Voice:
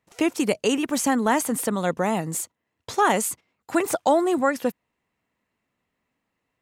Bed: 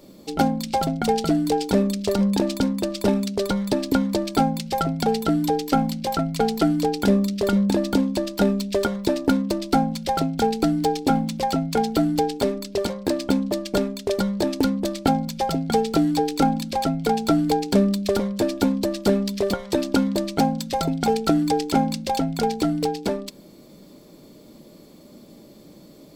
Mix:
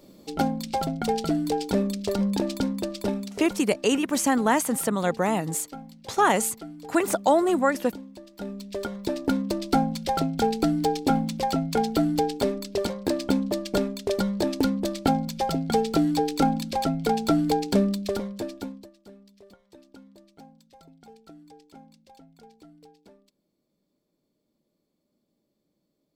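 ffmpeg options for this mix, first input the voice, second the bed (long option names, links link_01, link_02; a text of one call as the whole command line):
ffmpeg -i stem1.wav -i stem2.wav -filter_complex "[0:a]adelay=3200,volume=-0.5dB[link_01];[1:a]volume=13.5dB,afade=type=out:start_time=2.81:duration=0.88:silence=0.158489,afade=type=in:start_time=8.31:duration=1.37:silence=0.125893,afade=type=out:start_time=17.66:duration=1.25:silence=0.0446684[link_02];[link_01][link_02]amix=inputs=2:normalize=0" out.wav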